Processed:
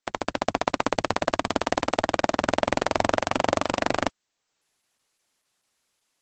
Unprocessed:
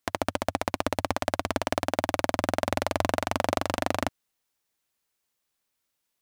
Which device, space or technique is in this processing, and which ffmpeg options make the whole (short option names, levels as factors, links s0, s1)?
video call: -af "highpass=f=150:p=1,dynaudnorm=f=230:g=3:m=2.99,volume=0.891" -ar 48000 -c:a libopus -b:a 12k